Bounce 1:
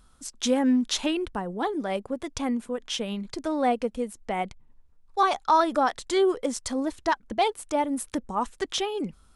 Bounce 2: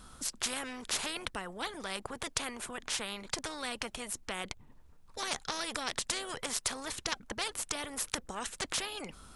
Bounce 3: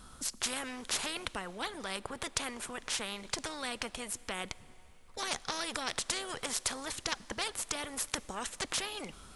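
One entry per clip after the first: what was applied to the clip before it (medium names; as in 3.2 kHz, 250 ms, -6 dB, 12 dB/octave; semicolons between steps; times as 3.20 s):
spectrum-flattening compressor 4:1; trim +2 dB
plate-style reverb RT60 3.6 s, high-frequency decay 0.9×, DRR 19 dB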